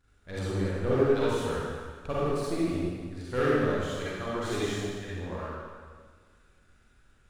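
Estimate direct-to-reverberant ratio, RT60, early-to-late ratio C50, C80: -8.5 dB, 1.7 s, -6.0 dB, -1.5 dB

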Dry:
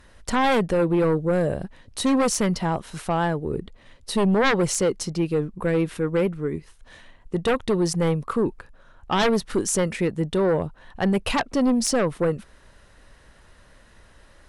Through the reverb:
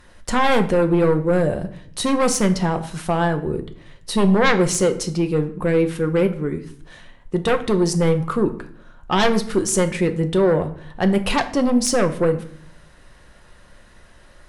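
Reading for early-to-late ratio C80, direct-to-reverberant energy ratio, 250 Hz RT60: 17.0 dB, 7.0 dB, 0.85 s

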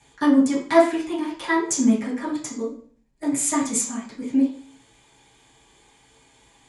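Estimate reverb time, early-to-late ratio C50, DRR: 0.45 s, 6.5 dB, -8.0 dB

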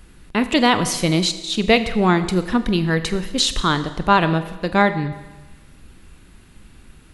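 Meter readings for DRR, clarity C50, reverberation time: 11.0 dB, 13.0 dB, 1.2 s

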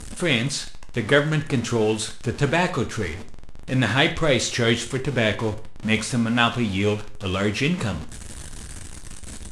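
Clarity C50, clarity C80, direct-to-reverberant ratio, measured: 13.5 dB, 17.5 dB, 6.5 dB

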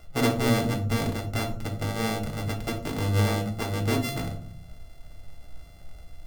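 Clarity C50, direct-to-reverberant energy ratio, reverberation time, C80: 11.0 dB, 2.5 dB, 0.55 s, 14.5 dB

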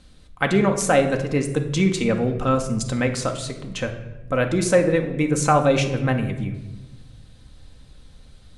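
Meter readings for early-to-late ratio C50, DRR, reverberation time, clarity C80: 9.5 dB, 4.0 dB, 1.0 s, 12.0 dB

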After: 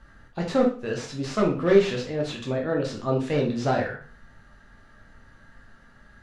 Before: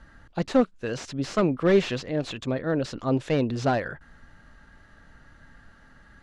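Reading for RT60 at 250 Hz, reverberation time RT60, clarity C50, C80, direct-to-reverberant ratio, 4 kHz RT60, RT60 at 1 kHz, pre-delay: 0.40 s, 0.40 s, 7.5 dB, 13.0 dB, -1.0 dB, 0.40 s, 0.40 s, 5 ms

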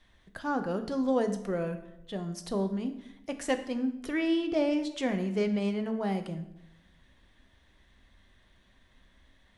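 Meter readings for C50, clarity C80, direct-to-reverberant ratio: 11.0 dB, 13.0 dB, 7.0 dB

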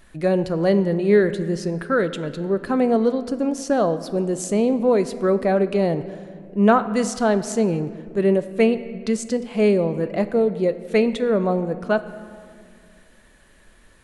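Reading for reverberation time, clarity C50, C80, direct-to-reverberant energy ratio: 2.1 s, 13.0 dB, 14.5 dB, 11.5 dB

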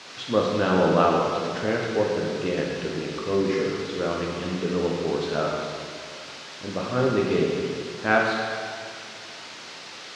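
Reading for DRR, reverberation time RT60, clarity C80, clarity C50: -2.5 dB, 2.2 s, 2.0 dB, 0.0 dB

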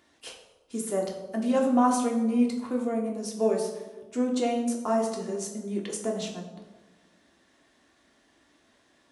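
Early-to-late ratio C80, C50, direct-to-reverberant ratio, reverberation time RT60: 8.5 dB, 6.5 dB, -0.5 dB, 1.3 s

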